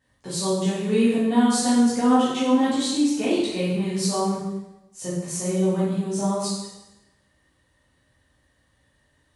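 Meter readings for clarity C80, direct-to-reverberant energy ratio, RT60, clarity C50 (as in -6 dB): 3.0 dB, -10.0 dB, 1.0 s, -0.5 dB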